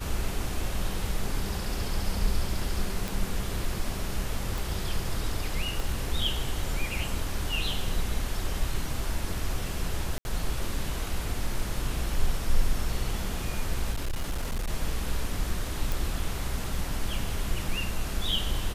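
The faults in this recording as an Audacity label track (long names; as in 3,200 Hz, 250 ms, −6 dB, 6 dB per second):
3.080000	3.080000	click
4.580000	4.580000	click
5.800000	5.800000	click
10.180000	10.250000	drop-out 71 ms
13.910000	14.700000	clipping −25.5 dBFS
15.920000	15.920000	click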